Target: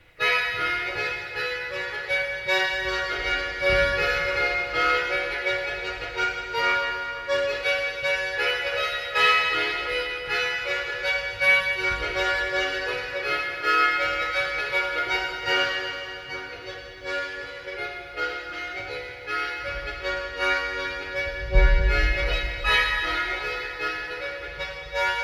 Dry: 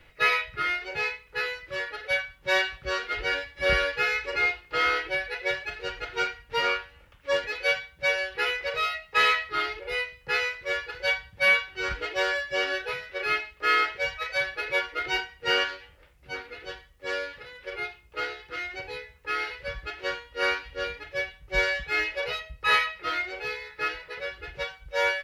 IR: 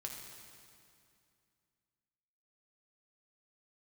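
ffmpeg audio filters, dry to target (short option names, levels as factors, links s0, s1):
-filter_complex "[0:a]asettb=1/sr,asplit=3[s0][s1][s2];[s0]atrim=end=21.264[s3];[s1]atrim=start=21.26:end=21.82,asetpts=PTS-STARTPTS,afade=t=in:d=0.004:c=qsin,afade=t=out:st=0.556:d=0.004:c=qsin,aemphasis=mode=reproduction:type=riaa[s4];[s2]atrim=start=21.816[s5];[s3][s4]acrossfade=d=0.004:c1=hsin:c2=qsin[s6];[s6][s5]acrossfade=d=0.004:c1=qsin:c2=hsin[s7];[1:a]atrim=start_sample=2205,asetrate=35280,aresample=44100[s8];[s7][s8]afir=irnorm=-1:irlink=0,volume=1.5"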